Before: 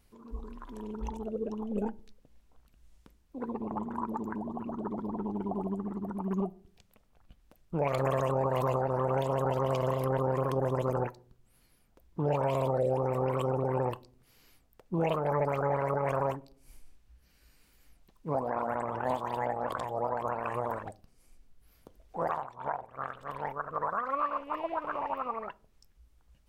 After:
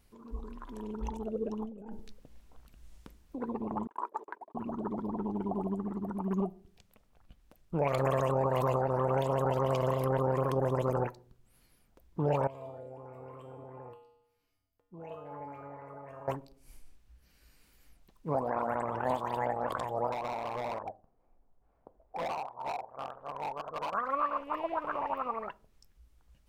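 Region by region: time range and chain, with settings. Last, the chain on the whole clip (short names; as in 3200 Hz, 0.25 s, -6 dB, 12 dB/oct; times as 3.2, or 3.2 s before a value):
1.65–3.37 dynamic EQ 2400 Hz, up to -3 dB, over -54 dBFS, Q 0.77 + negative-ratio compressor -42 dBFS
3.87–4.55 steep high-pass 390 Hz + gate -42 dBFS, range -38 dB
12.47–16.28 high shelf 2300 Hz -7.5 dB + resonator 95 Hz, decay 0.89 s, harmonics odd, mix 90%
20.12–23.94 synth low-pass 800 Hz, resonance Q 2.1 + low shelf 360 Hz -9 dB + hard clip -32 dBFS
whole clip: dry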